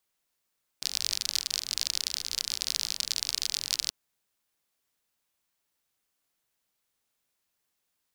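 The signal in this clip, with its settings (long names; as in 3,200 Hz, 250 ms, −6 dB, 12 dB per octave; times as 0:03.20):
rain-like ticks over hiss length 3.08 s, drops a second 48, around 4,700 Hz, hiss −22 dB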